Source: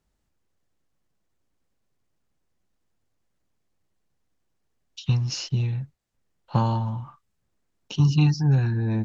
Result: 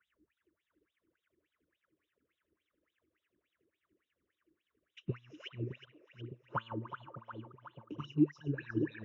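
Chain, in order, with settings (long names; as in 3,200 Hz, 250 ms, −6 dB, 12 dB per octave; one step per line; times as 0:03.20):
parametric band 67 Hz +13.5 dB 1.2 octaves
LFO wah 3.5 Hz 300–3,800 Hz, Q 15
in parallel at +2.5 dB: speech leveller 0.5 s
on the sum: transient designer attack +5 dB, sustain −1 dB
phaser with its sweep stopped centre 1,900 Hz, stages 4
on a send: echo with a time of its own for lows and highs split 570 Hz, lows 611 ms, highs 365 ms, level −11 dB
on the sum: multiband upward and downward compressor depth 40%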